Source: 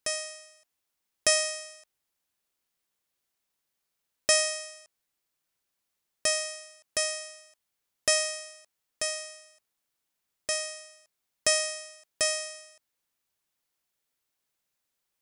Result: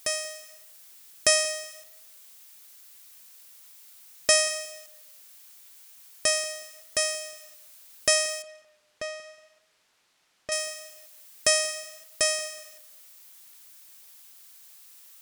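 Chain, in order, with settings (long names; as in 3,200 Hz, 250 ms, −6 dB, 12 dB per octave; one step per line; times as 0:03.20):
background noise blue −54 dBFS
0:08.42–0:10.52: head-to-tape spacing loss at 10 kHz 22 dB
on a send: tape delay 183 ms, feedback 32%, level −19 dB
on the sum: level +2.5 dB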